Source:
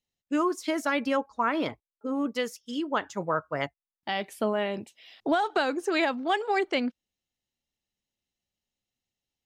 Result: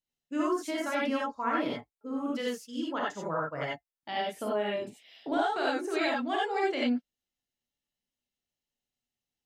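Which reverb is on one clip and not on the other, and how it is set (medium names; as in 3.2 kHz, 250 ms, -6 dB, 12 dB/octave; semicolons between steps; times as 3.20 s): gated-style reverb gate 110 ms rising, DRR -4.5 dB; trim -9 dB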